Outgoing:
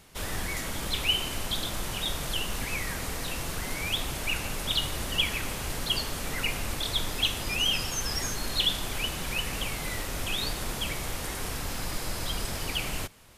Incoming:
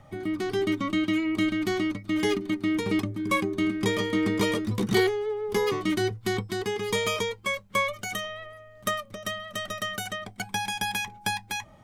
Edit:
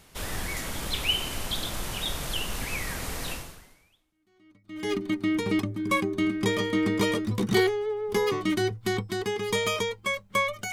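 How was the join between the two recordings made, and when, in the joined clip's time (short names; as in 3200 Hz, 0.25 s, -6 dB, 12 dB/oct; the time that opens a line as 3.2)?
outgoing
4.14 switch to incoming from 1.54 s, crossfade 1.64 s exponential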